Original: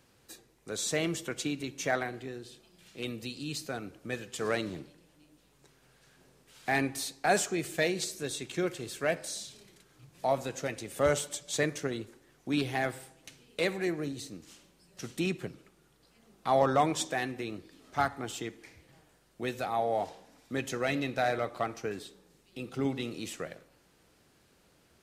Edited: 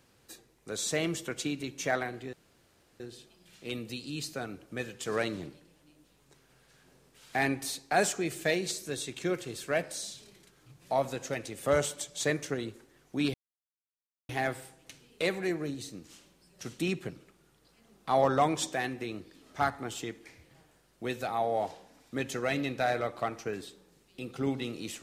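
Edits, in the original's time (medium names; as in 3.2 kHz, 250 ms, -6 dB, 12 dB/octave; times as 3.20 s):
2.33 s: insert room tone 0.67 s
12.67 s: insert silence 0.95 s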